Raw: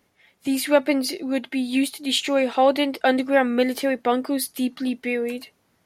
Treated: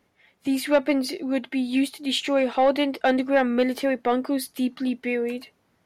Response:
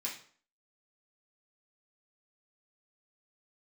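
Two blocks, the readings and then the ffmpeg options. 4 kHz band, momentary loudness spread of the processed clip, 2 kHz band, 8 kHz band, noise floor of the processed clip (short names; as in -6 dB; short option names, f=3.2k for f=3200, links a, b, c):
-3.5 dB, 7 LU, -2.5 dB, -6.5 dB, -68 dBFS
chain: -af "highshelf=f=4.6k:g=-7.5,acontrast=87,volume=-7.5dB"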